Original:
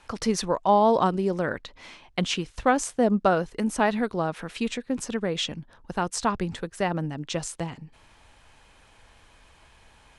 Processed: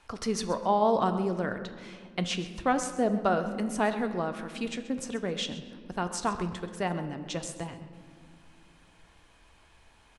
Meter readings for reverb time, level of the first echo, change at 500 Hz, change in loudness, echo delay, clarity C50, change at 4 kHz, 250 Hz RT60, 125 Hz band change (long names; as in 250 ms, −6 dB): 2.0 s, −15.0 dB, −4.5 dB, −4.5 dB, 131 ms, 10.0 dB, −4.5 dB, 3.8 s, −4.0 dB